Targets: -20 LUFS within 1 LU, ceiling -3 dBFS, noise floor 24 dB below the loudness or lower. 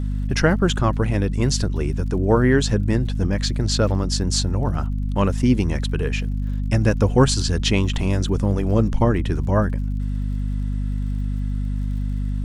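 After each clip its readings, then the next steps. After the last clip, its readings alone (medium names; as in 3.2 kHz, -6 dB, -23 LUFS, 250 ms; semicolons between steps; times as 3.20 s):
tick rate 56 per s; hum 50 Hz; highest harmonic 250 Hz; hum level -21 dBFS; loudness -21.5 LUFS; peak level -3.5 dBFS; loudness target -20.0 LUFS
-> de-click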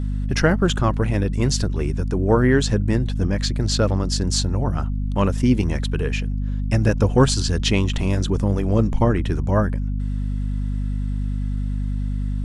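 tick rate 0.080 per s; hum 50 Hz; highest harmonic 250 Hz; hum level -21 dBFS
-> de-hum 50 Hz, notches 5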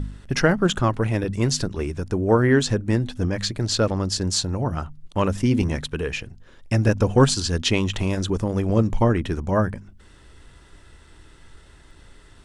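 hum not found; loudness -22.5 LUFS; peak level -4.5 dBFS; loudness target -20.0 LUFS
-> trim +2.5 dB; peak limiter -3 dBFS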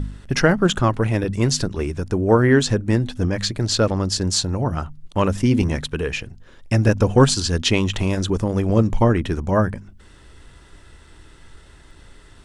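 loudness -20.0 LUFS; peak level -3.0 dBFS; noise floor -47 dBFS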